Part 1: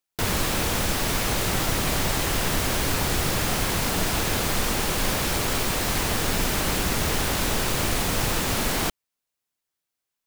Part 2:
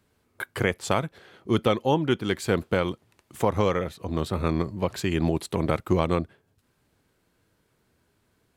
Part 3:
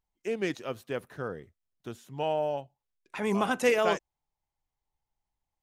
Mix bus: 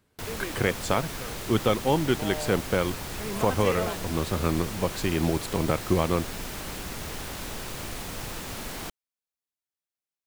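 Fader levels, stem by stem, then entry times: -11.5 dB, -1.0 dB, -7.0 dB; 0.00 s, 0.00 s, 0.00 s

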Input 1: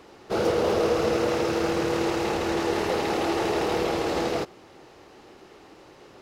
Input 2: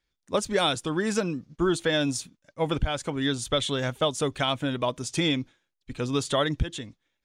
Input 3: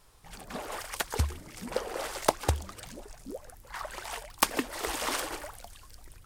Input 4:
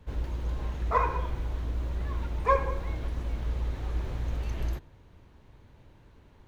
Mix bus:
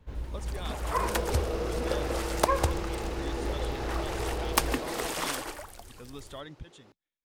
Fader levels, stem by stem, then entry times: -10.5 dB, -18.0 dB, -0.5 dB, -4.0 dB; 0.70 s, 0.00 s, 0.15 s, 0.00 s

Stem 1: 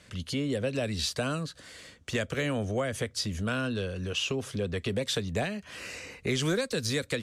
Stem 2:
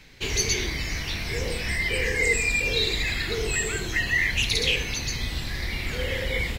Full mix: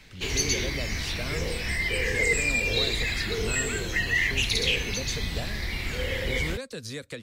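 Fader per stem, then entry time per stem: -7.0 dB, -1.5 dB; 0.00 s, 0.00 s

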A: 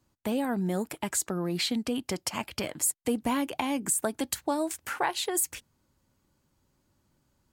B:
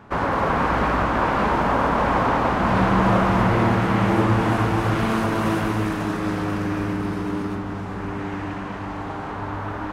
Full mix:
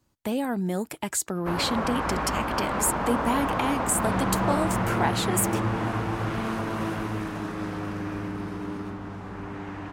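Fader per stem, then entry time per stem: +1.5 dB, -7.5 dB; 0.00 s, 1.35 s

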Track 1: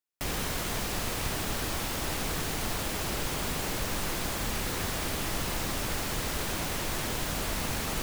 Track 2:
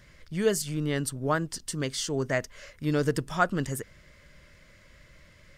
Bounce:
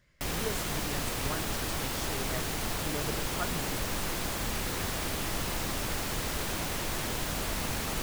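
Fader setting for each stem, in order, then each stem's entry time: -1.0 dB, -12.5 dB; 0.00 s, 0.00 s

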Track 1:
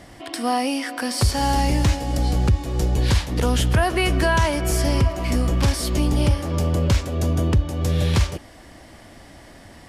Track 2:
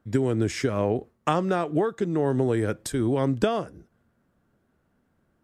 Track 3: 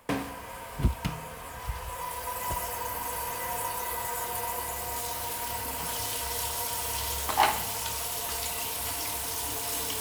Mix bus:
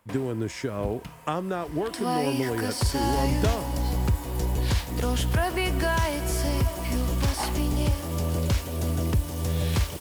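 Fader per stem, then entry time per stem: -6.0 dB, -5.0 dB, -9.5 dB; 1.60 s, 0.00 s, 0.00 s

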